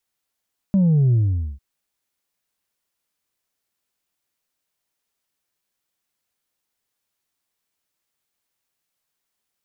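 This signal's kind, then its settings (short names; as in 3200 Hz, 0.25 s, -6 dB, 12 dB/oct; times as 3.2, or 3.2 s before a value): sub drop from 200 Hz, over 0.85 s, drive 2 dB, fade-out 0.46 s, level -13.5 dB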